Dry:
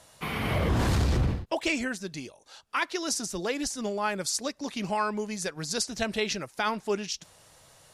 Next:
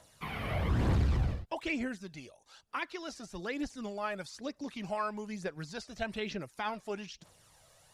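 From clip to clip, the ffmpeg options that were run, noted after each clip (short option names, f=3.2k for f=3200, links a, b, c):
-filter_complex "[0:a]acrossover=split=3600[a][b];[b]acompressor=threshold=-49dB:ratio=4:attack=1:release=60[c];[a][c]amix=inputs=2:normalize=0,aphaser=in_gain=1:out_gain=1:delay=1.8:decay=0.45:speed=1.1:type=triangular,volume=-7.5dB"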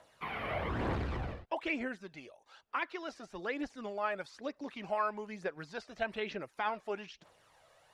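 -af "bass=f=250:g=-12,treble=f=4k:g=-14,volume=2dB"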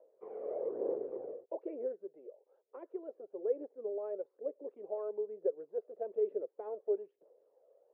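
-af "asuperpass=centerf=460:order=4:qfactor=3,volume=8dB"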